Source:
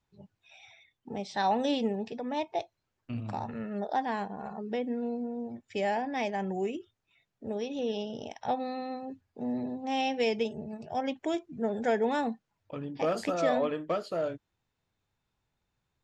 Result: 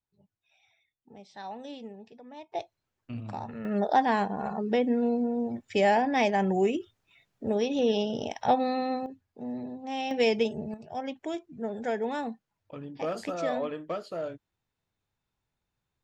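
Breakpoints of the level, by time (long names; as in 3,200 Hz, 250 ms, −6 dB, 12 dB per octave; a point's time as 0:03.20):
−13 dB
from 0:02.52 −1.5 dB
from 0:03.65 +7 dB
from 0:09.06 −3 dB
from 0:10.11 +4 dB
from 0:10.74 −3 dB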